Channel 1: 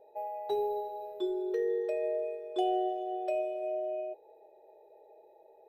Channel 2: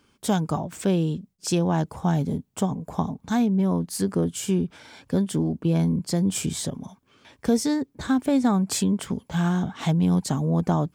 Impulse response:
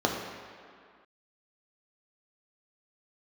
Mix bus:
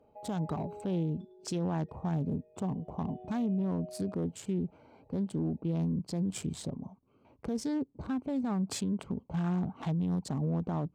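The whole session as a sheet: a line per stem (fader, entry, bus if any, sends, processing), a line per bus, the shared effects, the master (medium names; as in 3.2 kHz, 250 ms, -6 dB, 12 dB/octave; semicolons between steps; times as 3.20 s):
0.87 s -8.5 dB -> 1.24 s -20 dB -> 2.84 s -20 dB -> 3.10 s -9.5 dB, 0.00 s, no send, echo send -12.5 dB, compression, threshold -35 dBFS, peak gain reduction 9.5 dB
-4.5 dB, 0.00 s, no send, no echo send, local Wiener filter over 25 samples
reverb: none
echo: delay 106 ms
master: treble shelf 6.7 kHz -10.5 dB; peak limiter -25.5 dBFS, peak gain reduction 10.5 dB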